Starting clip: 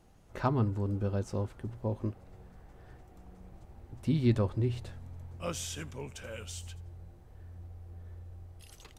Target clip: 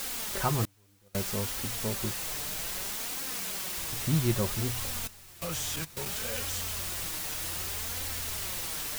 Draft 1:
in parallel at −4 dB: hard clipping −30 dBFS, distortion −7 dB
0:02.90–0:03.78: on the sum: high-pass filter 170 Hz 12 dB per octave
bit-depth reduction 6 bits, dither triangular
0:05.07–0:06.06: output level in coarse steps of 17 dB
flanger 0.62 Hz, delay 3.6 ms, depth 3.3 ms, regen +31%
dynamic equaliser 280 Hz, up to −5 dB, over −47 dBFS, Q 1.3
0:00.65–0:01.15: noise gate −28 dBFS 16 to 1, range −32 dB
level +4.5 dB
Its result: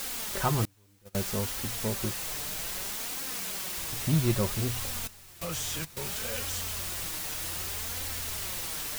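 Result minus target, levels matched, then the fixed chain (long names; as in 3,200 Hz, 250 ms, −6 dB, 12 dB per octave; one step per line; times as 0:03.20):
hard clipping: distortion −5 dB
in parallel at −4 dB: hard clipping −37.5 dBFS, distortion −3 dB
0:02.90–0:03.78: on the sum: high-pass filter 170 Hz 12 dB per octave
bit-depth reduction 6 bits, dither triangular
0:05.07–0:06.06: output level in coarse steps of 17 dB
flanger 0.62 Hz, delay 3.6 ms, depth 3.3 ms, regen +31%
dynamic equaliser 280 Hz, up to −5 dB, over −47 dBFS, Q 1.3
0:00.65–0:01.15: noise gate −28 dBFS 16 to 1, range −32 dB
level +4.5 dB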